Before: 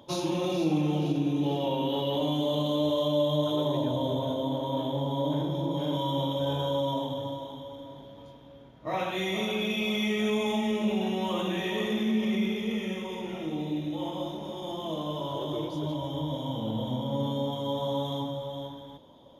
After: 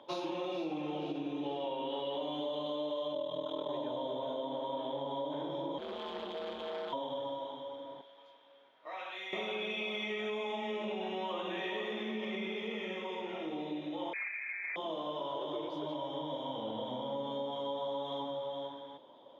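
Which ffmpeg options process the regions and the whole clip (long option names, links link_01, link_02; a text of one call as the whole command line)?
ffmpeg -i in.wav -filter_complex "[0:a]asettb=1/sr,asplit=3[link_01][link_02][link_03];[link_01]atrim=end=3.134[link_04];[link_02]atrim=start=3.13:end=3.69,asetpts=PTS-STARTPTS,afade=type=in:duration=0.004:curve=qsin,afade=type=out:start_time=0.556:duration=0.004:curve=qsin,bandreject=frequency=770:width=11,aeval=exprs='val(0)*sin(2*PI*20*n/s)':channel_layout=same[link_05];[link_03]atrim=start=3.686[link_06];[link_04][link_05]acrossfade=duration=0.004:curve1=hsin:curve2=qsin[link_07];[link_07][link_06]acrossfade=duration=0.004:curve1=qsin:curve2=hsin,asettb=1/sr,asplit=3[link_08][link_09][link_10];[link_08]atrim=end=5.784[link_11];[link_09]atrim=start=5.78:end=6.93,asetpts=PTS-STARTPTS,afade=type=in:duration=0.004:curve=qsin,afade=type=out:start_time=1.146:duration=0.004:curve=qsin,equalizer=frequency=1300:width=0.99:gain=-8.5,aeval=exprs='val(0)*sin(2*PI*84*n/s)':channel_layout=same,asoftclip=type=hard:threshold=-33dB[link_12];[link_10]atrim=start=6.926[link_13];[link_11][link_12]acrossfade=duration=0.004:curve1=hsin:curve2=qsin[link_14];[link_14][link_13]acrossfade=duration=0.004:curve1=qsin:curve2=hsin,asettb=1/sr,asplit=3[link_15][link_16][link_17];[link_15]atrim=end=8.014[link_18];[link_16]atrim=start=8.01:end=9.33,asetpts=PTS-STARTPTS,afade=type=in:duration=0.004:curve=qsin,afade=type=out:start_time=1.316:duration=0.004:curve=qsin,highpass=frequency=1500:poles=1,acompressor=threshold=-42dB:ratio=2:attack=3.2:release=140:knee=1:detection=peak[link_19];[link_17]atrim=start=9.326[link_20];[link_18][link_19]acrossfade=duration=0.004:curve1=hsin:curve2=qsin[link_21];[link_21][link_20]acrossfade=duration=0.004:curve1=qsin:curve2=hsin,asettb=1/sr,asplit=3[link_22][link_23][link_24];[link_22]atrim=end=14.134[link_25];[link_23]atrim=start=14.13:end=14.76,asetpts=PTS-STARTPTS,afade=type=in:duration=0.004:curve=qsin,afade=type=out:start_time=0.626:duration=0.004:curve=qsin,lowshelf=frequency=160:gain=-11,asoftclip=type=hard:threshold=-32dB,lowpass=frequency=2300:width_type=q:width=0.5098,lowpass=frequency=2300:width_type=q:width=0.6013,lowpass=frequency=2300:width_type=q:width=0.9,lowpass=frequency=2300:width_type=q:width=2.563,afreqshift=-2700[link_26];[link_24]atrim=start=14.756[link_27];[link_25][link_26]acrossfade=duration=0.004:curve1=hsin:curve2=qsin[link_28];[link_28][link_27]acrossfade=duration=0.004:curve1=qsin:curve2=hsin,highpass=110,acrossover=split=330 4000:gain=0.141 1 0.0794[link_29][link_30][link_31];[link_29][link_30][link_31]amix=inputs=3:normalize=0,acompressor=threshold=-34dB:ratio=6" out.wav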